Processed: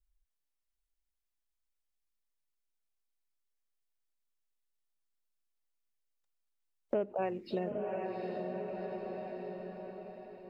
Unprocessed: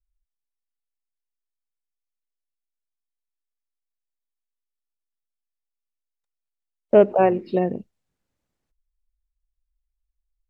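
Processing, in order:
0:07.22–0:07.71: high-shelf EQ 2,500 Hz +10.5 dB
feedback delay with all-pass diffusion 778 ms, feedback 41%, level −10 dB
downward compressor 3 to 1, threshold −37 dBFS, peak gain reduction 20.5 dB

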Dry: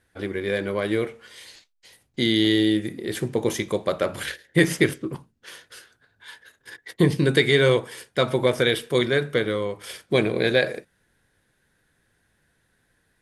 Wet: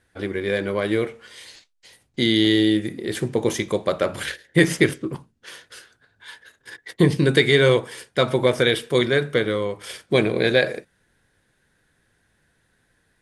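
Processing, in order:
low-pass filter 11,000 Hz 24 dB per octave
level +2 dB

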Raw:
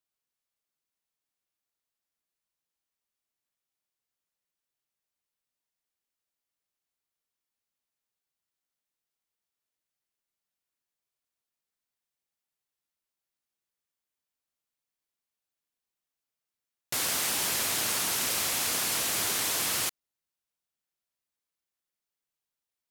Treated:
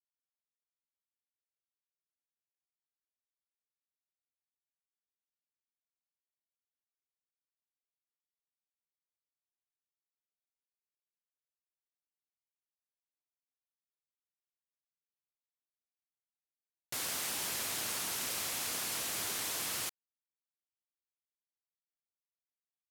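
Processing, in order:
bit reduction 9 bits
level −8 dB

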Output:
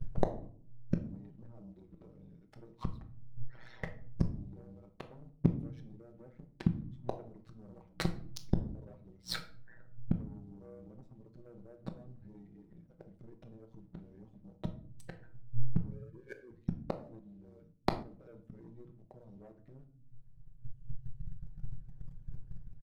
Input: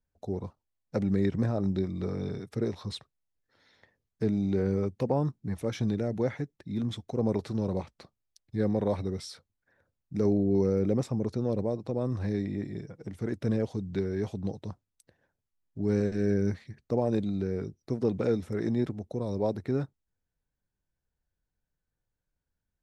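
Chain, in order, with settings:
0:15.91–0:16.51: three sine waves on the formant tracks
mains-hum notches 60/120/180/240 Hz
reverb reduction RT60 1.6 s
spectral tilt −4 dB per octave
comb filter 6.3 ms, depth 98%
0:07.59–0:08.58: leveller curve on the samples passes 1
downward compressor 2 to 1, threshold −38 dBFS, peak gain reduction 14 dB
leveller curve on the samples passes 2
gate with flip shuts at −28 dBFS, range −42 dB
amplitude modulation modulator 120 Hz, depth 70%
rectangular room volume 510 cubic metres, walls furnished, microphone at 1.1 metres
0:17.19–0:18.03: multiband upward and downward expander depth 70%
level +17.5 dB

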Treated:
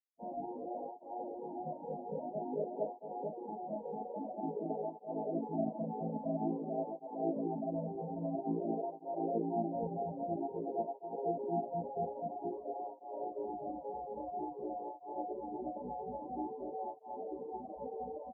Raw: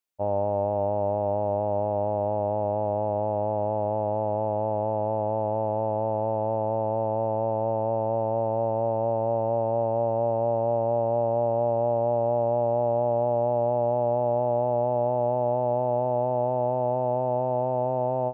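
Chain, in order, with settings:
sub-octave generator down 2 octaves, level −1 dB
elliptic low-pass filter 530 Hz, stop band 60 dB
mains-hum notches 50/100/150/200/250/300/350 Hz
repeating echo 327 ms, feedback 48%, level −14.5 dB
on a send at −1.5 dB: convolution reverb RT60 0.35 s, pre-delay 9 ms
on the sum: gate on every frequency bin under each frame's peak −15 dB weak
spectral tilt +3.5 dB per octave
double-tracking delay 36 ms −7 dB
reverb reduction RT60 0.7 s
parametric band 85 Hz −9.5 dB 1.6 octaves
through-zero flanger with one copy inverted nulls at 0.5 Hz, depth 3.3 ms
level +14.5 dB

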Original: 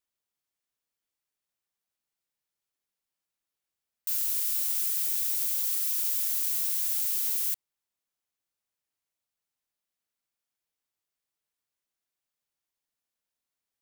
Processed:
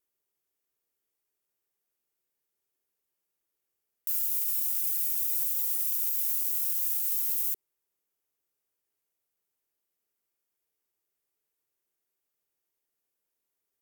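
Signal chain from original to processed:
graphic EQ with 15 bands 400 Hz +10 dB, 4,000 Hz −4 dB, 16,000 Hz +9 dB
brickwall limiter −19 dBFS, peak gain reduction 9 dB

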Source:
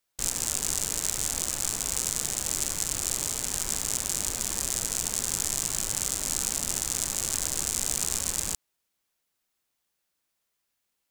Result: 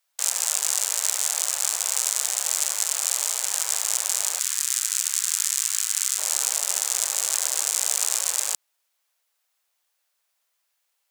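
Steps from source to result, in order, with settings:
high-pass filter 590 Hz 24 dB per octave, from 0:04.39 1,300 Hz, from 0:06.18 530 Hz
level +5 dB

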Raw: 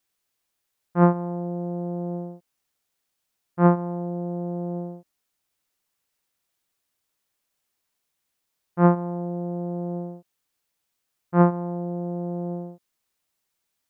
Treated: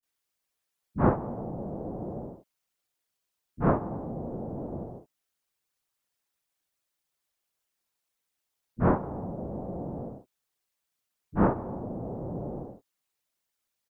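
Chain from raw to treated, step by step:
multiband delay without the direct sound lows, highs 30 ms, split 210 Hz
random phases in short frames
level −4.5 dB

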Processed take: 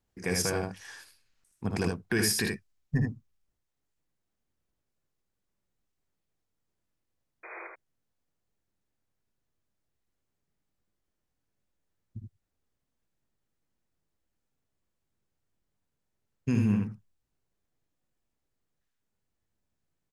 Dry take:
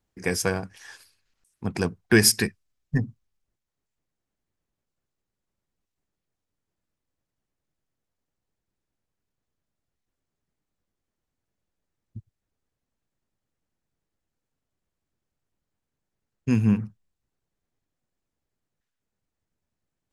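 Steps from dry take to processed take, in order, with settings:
brickwall limiter −15.5 dBFS, peak gain reduction 10.5 dB
sound drawn into the spectrogram noise, 0:07.43–0:07.68, 330–2,500 Hz −42 dBFS
ambience of single reflections 56 ms −9 dB, 77 ms −4 dB
level −2.5 dB

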